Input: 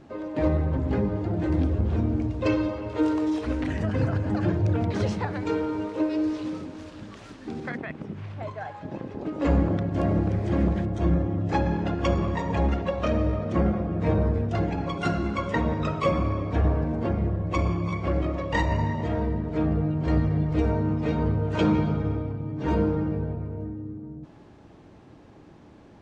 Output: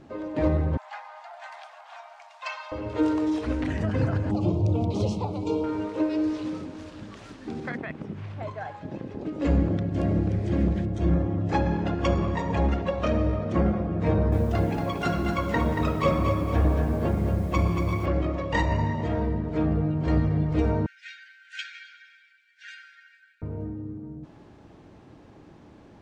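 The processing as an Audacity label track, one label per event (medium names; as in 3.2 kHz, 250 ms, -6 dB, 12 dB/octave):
0.770000	2.720000	steep high-pass 690 Hz 72 dB/octave
4.310000	5.640000	Butterworth band-stop 1.7 kHz, Q 1
8.750000	11.080000	dynamic bell 1 kHz, up to -7 dB, over -44 dBFS, Q 0.94
14.090000	18.060000	bit-crushed delay 231 ms, feedback 35%, word length 8-bit, level -6 dB
20.860000	23.420000	brick-wall FIR high-pass 1.4 kHz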